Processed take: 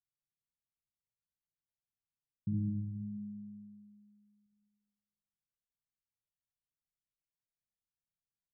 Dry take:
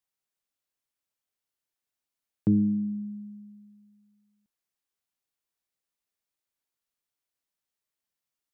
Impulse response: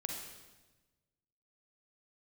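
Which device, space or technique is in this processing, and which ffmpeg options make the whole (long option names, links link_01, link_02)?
club heard from the street: -filter_complex "[0:a]alimiter=limit=-22.5dB:level=0:latency=1,lowpass=frequency=180:width=0.5412,lowpass=frequency=180:width=1.3066[link_01];[1:a]atrim=start_sample=2205[link_02];[link_01][link_02]afir=irnorm=-1:irlink=0"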